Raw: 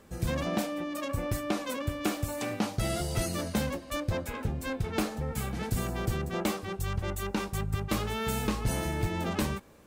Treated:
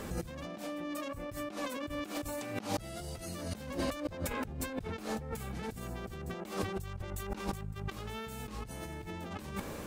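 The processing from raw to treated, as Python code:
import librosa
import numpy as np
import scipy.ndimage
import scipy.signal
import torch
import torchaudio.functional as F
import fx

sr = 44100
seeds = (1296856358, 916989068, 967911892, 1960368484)

y = fx.over_compress(x, sr, threshold_db=-44.0, ratio=-1.0)
y = y * 10.0 ** (3.5 / 20.0)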